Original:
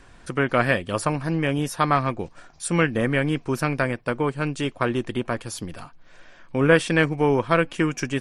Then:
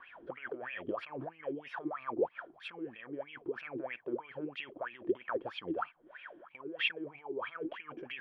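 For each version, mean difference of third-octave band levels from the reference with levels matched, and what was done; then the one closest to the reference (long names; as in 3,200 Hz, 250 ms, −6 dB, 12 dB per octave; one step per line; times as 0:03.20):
12.0 dB: high-frequency loss of the air 380 metres
compressor whose output falls as the input rises −32 dBFS, ratio −1
LFO wah 3.1 Hz 320–2,600 Hz, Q 14
parametric band 3,200 Hz +12 dB 0.23 octaves
level +9.5 dB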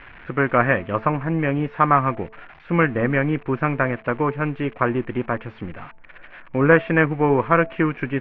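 5.0 dB: spike at every zero crossing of −21.5 dBFS
Butterworth low-pass 2,400 Hz 36 dB per octave
hum removal 219.7 Hz, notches 4
dynamic equaliser 1,100 Hz, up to +4 dB, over −34 dBFS, Q 2.5
level +2 dB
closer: second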